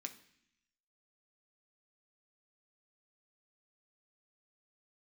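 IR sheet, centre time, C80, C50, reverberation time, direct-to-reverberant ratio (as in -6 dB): 9 ms, 16.5 dB, 13.5 dB, 0.65 s, 4.0 dB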